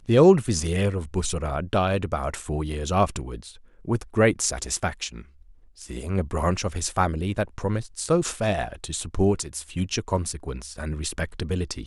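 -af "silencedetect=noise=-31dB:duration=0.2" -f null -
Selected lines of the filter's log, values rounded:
silence_start: 3.46
silence_end: 3.88 | silence_duration: 0.42
silence_start: 5.20
silence_end: 5.82 | silence_duration: 0.62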